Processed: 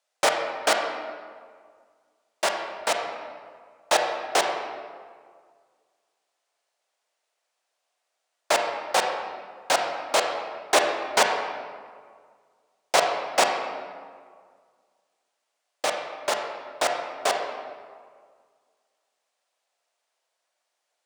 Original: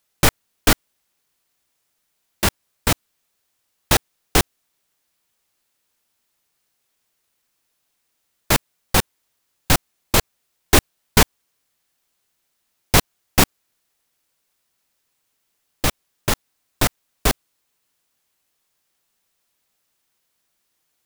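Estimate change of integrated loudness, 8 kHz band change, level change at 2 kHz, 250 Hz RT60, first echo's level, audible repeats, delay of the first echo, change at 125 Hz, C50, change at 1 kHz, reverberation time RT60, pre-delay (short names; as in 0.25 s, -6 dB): -5.0 dB, -7.0 dB, -2.5 dB, 1.8 s, none, none, none, under -25 dB, 3.5 dB, +1.5 dB, 1.9 s, 30 ms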